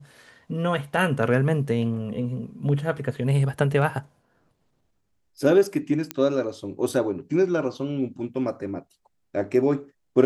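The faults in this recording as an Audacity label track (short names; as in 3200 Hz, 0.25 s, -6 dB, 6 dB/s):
6.110000	6.110000	pop -11 dBFS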